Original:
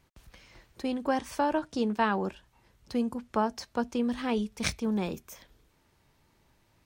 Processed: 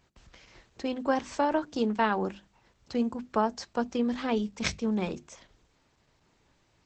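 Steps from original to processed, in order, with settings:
low-shelf EQ 120 Hz −3.5 dB
mains-hum notches 50/100/150/200/250/300/350 Hz
level +2 dB
Opus 12 kbit/s 48,000 Hz

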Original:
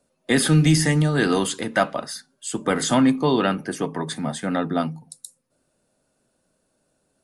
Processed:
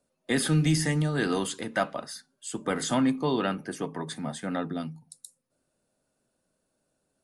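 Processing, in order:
0:04.71–0:05.13: parametric band 1,200 Hz → 380 Hz −9.5 dB 2 octaves
level −7 dB

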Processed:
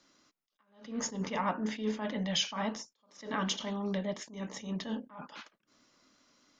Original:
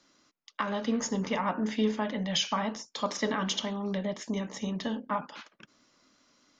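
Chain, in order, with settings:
level that may rise only so fast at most 130 dB per second
level −1.5 dB

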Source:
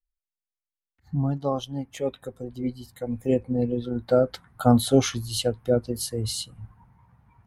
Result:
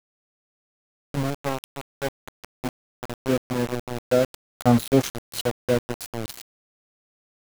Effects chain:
centre clipping without the shift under −23 dBFS

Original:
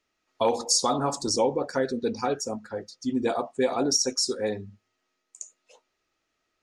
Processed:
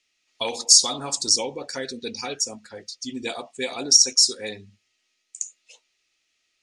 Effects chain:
flat-topped bell 4,600 Hz +16 dB 2.7 octaves
level −6.5 dB

